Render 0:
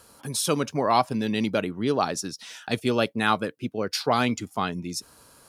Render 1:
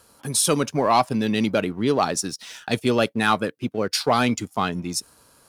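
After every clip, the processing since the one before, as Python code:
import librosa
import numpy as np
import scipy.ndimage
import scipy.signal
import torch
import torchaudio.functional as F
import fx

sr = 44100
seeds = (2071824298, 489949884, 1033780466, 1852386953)

y = fx.dynamic_eq(x, sr, hz=8800.0, q=1.7, threshold_db=-45.0, ratio=4.0, max_db=5)
y = fx.leveller(y, sr, passes=1)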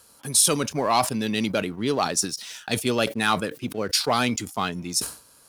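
y = fx.high_shelf(x, sr, hz=2600.0, db=7.5)
y = fx.sustainer(y, sr, db_per_s=140.0)
y = y * 10.0 ** (-4.0 / 20.0)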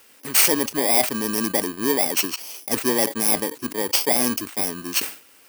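y = fx.bit_reversed(x, sr, seeds[0], block=32)
y = fx.low_shelf_res(y, sr, hz=210.0, db=-9.0, q=1.5)
y = y * 10.0 ** (2.5 / 20.0)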